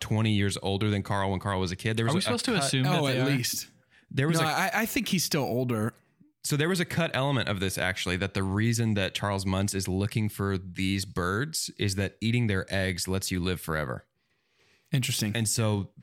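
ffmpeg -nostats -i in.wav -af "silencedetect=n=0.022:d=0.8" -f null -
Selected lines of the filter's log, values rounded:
silence_start: 13.97
silence_end: 14.93 | silence_duration: 0.96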